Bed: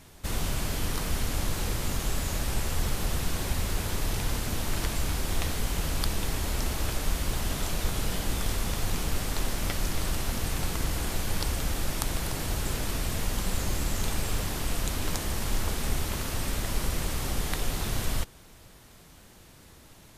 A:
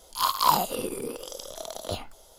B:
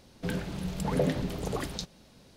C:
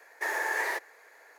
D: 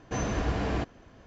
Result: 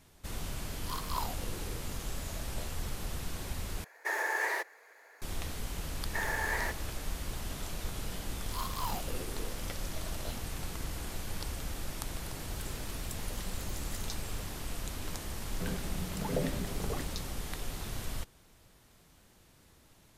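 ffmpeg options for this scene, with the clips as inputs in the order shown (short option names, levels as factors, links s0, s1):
-filter_complex "[1:a]asplit=2[s0][s1];[3:a]asplit=2[s2][s3];[2:a]asplit=2[s4][s5];[0:a]volume=0.355[s6];[s1]asoftclip=type=tanh:threshold=0.0841[s7];[s4]aderivative[s8];[s6]asplit=2[s9][s10];[s9]atrim=end=3.844[s11];[s2]atrim=end=1.38,asetpts=PTS-STARTPTS,volume=0.794[s12];[s10]atrim=start=5.216[s13];[s0]atrim=end=2.38,asetpts=PTS-STARTPTS,volume=0.158,afade=t=in:d=0.004:c=hsin,afade=t=out:st=2.376:d=0.004:c=hsin,adelay=690[s14];[s3]atrim=end=1.38,asetpts=PTS-STARTPTS,volume=0.631,afade=t=in:d=0.004:c=hsin,afade=t=out:st=1.376:d=0.004:c=hsin,adelay=261513S[s15];[s7]atrim=end=2.38,asetpts=PTS-STARTPTS,volume=0.266,afade=t=in:d=0.004:c=hsin,afade=t=out:st=2.376:d=0.004:c=hsin,adelay=8360[s16];[s8]atrim=end=2.36,asetpts=PTS-STARTPTS,volume=0.75,afade=t=in:d=0.004:c=hsin,afade=t=out:st=2.356:d=0.004:c=hsin,adelay=12310[s17];[s5]atrim=end=2.36,asetpts=PTS-STARTPTS,volume=0.501,afade=t=in:d=0.004:c=hsin,afade=t=out:st=2.356:d=0.004:c=hsin,adelay=15370[s18];[s11][s12]acrossfade=d=0.004:c1=hsin:c2=hsin[s19];[s19][s13]acrossfade=d=0.004:c1=hsin:c2=hsin[s20];[s20][s14][s15][s16][s17][s18]amix=inputs=6:normalize=0"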